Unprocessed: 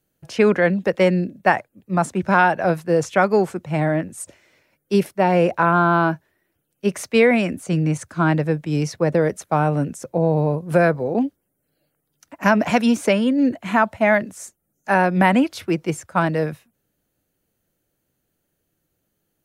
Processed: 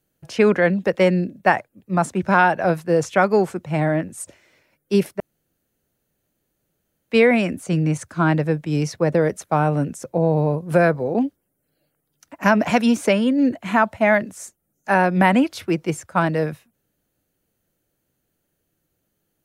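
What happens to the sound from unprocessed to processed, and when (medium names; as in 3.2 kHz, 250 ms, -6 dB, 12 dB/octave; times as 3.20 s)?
5.20–7.11 s: room tone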